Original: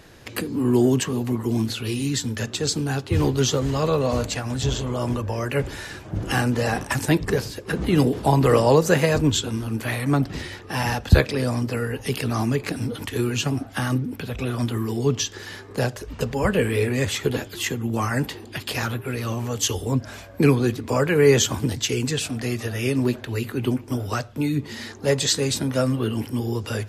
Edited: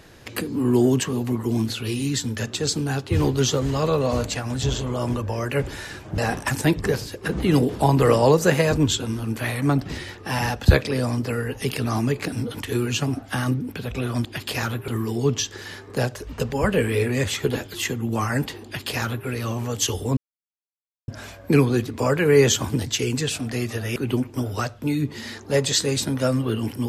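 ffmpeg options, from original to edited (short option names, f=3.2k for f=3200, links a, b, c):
-filter_complex "[0:a]asplit=6[a][b][c][d][e][f];[a]atrim=end=6.182[g];[b]atrim=start=6.618:end=14.692[h];[c]atrim=start=18.448:end=19.082[i];[d]atrim=start=14.688:end=19.98,asetpts=PTS-STARTPTS,afade=t=out:st=5.288:d=0.004:c=hsin,apad=pad_dur=0.91[j];[e]atrim=start=19.98:end=22.862,asetpts=PTS-STARTPTS,afade=t=in:d=0.004:c=hsin[k];[f]atrim=start=23.498[l];[g][h]acrossfade=d=0.004:c1=hsin:c2=hsin[m];[m][i]acrossfade=d=0.004:c1=hsin:c2=hsin[n];[j][k]concat=n=2:v=0:a=1[o];[n][o]acrossfade=d=0.004:c1=hsin:c2=hsin[p];[p][l]acrossfade=d=0.004:c1=hsin:c2=hsin"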